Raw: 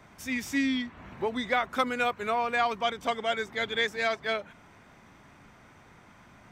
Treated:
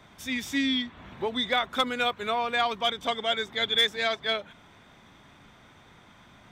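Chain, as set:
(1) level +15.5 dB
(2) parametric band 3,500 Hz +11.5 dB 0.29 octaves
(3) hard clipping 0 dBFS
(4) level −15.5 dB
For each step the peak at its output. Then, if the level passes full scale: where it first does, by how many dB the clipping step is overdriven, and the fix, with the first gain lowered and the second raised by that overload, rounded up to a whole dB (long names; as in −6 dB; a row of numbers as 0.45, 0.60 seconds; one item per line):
+1.0, +4.5, 0.0, −15.5 dBFS
step 1, 4.5 dB
step 1 +10.5 dB, step 4 −10.5 dB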